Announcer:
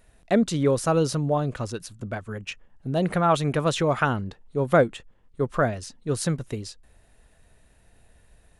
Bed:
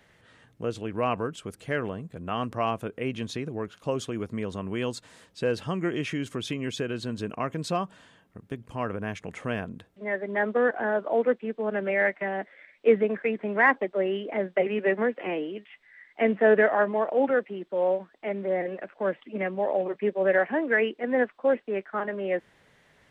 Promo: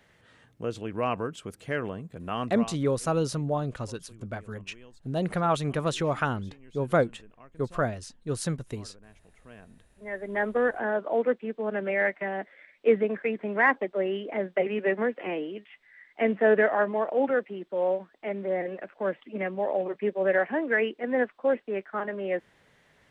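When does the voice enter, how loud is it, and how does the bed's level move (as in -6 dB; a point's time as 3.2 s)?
2.20 s, -4.5 dB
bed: 2.5 s -1.5 dB
2.82 s -22.5 dB
9.37 s -22.5 dB
10.33 s -1.5 dB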